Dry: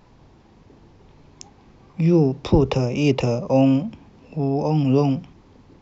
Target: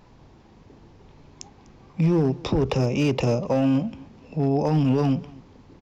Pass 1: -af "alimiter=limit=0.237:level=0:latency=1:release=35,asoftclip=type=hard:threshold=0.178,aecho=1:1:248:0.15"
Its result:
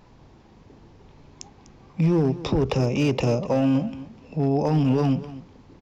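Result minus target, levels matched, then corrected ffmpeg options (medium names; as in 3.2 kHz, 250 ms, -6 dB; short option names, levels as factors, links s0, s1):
echo-to-direct +7 dB
-af "alimiter=limit=0.237:level=0:latency=1:release=35,asoftclip=type=hard:threshold=0.178,aecho=1:1:248:0.0668"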